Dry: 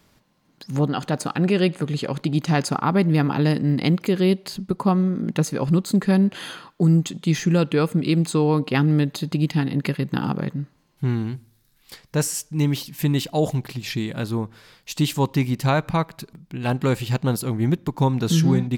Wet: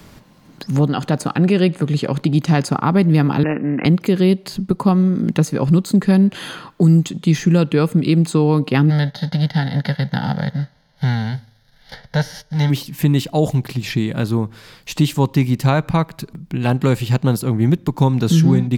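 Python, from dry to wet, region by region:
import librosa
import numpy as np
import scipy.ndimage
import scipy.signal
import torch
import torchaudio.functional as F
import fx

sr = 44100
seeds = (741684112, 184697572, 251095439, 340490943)

y = fx.chain(x, sr, fx.highpass(hz=300.0, slope=12),
    fx.resample_bad(factor=8, down='none', up='filtered'), at=(3.43, 3.85))
y = fx.envelope_flatten(y, sr, power=0.6, at=(8.89, 12.69), fade=0.02)
y = fx.bessel_lowpass(y, sr, hz=4900.0, order=2, at=(8.89, 12.69), fade=0.02)
y = fx.fixed_phaser(y, sr, hz=1700.0, stages=8, at=(8.89, 12.69), fade=0.02)
y = fx.low_shelf(y, sr, hz=280.0, db=5.0)
y = fx.band_squash(y, sr, depth_pct=40)
y = F.gain(torch.from_numpy(y), 2.0).numpy()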